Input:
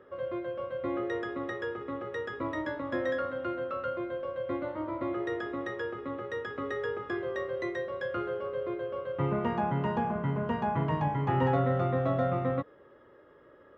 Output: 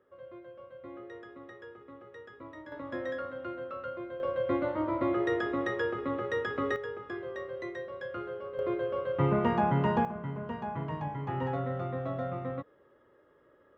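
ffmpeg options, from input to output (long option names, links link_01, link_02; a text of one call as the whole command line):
ffmpeg -i in.wav -af "asetnsamples=nb_out_samples=441:pad=0,asendcmd='2.72 volume volume -5dB;4.2 volume volume 4dB;6.76 volume volume -5dB;8.59 volume volume 3dB;10.05 volume volume -6.5dB',volume=-13dB" out.wav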